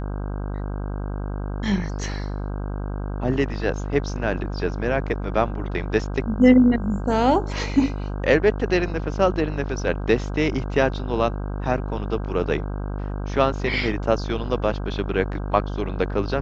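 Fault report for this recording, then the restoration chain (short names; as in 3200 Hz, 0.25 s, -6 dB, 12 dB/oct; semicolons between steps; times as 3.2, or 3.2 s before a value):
buzz 50 Hz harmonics 32 -28 dBFS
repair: de-hum 50 Hz, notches 32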